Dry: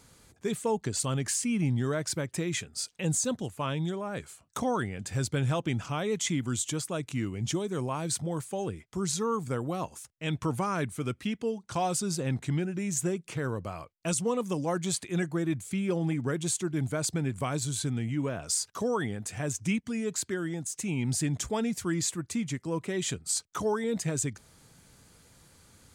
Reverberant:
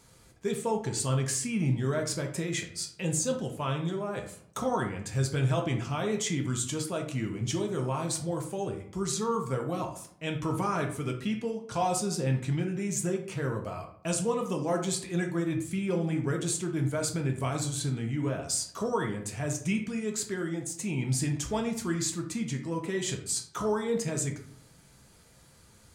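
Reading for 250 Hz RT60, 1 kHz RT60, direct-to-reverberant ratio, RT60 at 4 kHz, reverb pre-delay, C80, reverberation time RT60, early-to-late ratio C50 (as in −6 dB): 0.75 s, 0.60 s, 1.5 dB, 0.35 s, 3 ms, 12.5 dB, 0.60 s, 8.5 dB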